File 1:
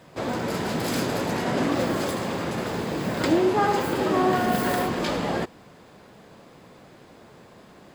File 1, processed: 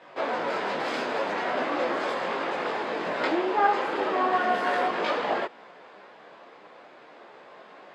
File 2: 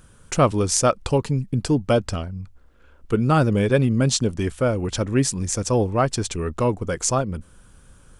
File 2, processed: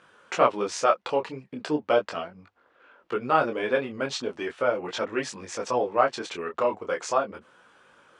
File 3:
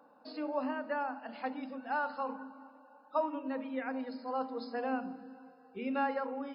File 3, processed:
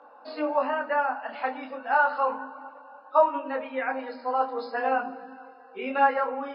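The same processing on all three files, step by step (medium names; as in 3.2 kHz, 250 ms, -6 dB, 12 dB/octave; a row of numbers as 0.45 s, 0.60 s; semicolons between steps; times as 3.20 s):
in parallel at -1 dB: compression, threshold -28 dBFS; on the sum: band-pass 530–2900 Hz; detune thickener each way 13 cents; normalise loudness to -27 LUFS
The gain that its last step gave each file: +3.0 dB, +2.5 dB, +10.5 dB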